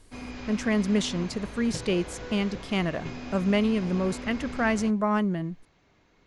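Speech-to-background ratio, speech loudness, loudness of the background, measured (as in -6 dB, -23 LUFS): 11.5 dB, -27.5 LUFS, -39.0 LUFS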